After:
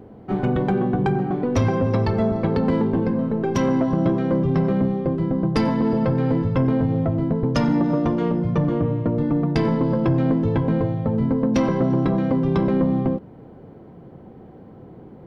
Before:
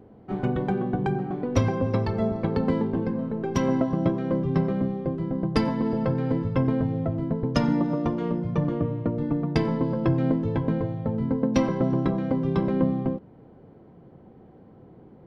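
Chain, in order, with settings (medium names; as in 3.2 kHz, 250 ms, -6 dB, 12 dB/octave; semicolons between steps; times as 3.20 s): in parallel at +2 dB: peak limiter -19 dBFS, peak gain reduction 11 dB; on the sum: saturation -10.5 dBFS, distortion -21 dB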